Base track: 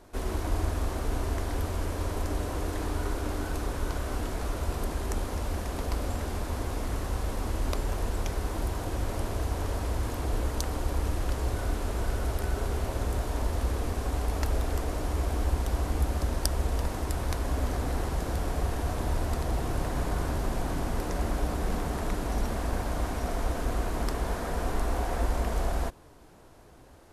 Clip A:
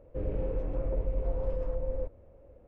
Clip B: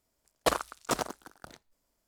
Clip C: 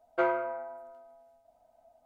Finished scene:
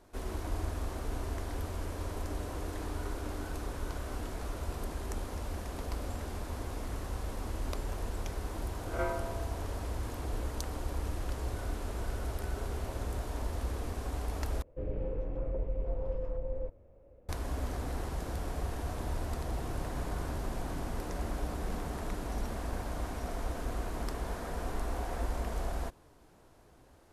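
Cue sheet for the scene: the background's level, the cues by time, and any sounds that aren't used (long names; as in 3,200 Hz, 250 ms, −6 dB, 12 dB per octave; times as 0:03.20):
base track −6.5 dB
0:08.81: mix in C −8 dB + peak hold with a rise ahead of every peak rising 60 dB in 0.43 s
0:14.62: overwrite with A −3.5 dB
not used: B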